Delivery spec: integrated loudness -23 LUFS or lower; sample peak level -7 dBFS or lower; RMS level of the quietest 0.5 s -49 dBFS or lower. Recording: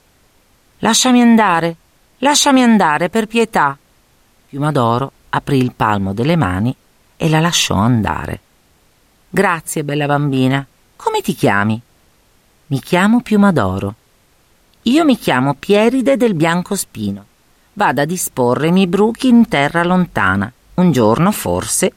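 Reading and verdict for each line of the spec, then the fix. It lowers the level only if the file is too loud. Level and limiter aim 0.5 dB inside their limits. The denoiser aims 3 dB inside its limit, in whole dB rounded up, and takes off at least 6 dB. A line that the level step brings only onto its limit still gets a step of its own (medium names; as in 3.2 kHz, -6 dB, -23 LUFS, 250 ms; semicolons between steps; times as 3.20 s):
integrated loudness -14.5 LUFS: fail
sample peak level -1.5 dBFS: fail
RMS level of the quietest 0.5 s -54 dBFS: pass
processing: trim -9 dB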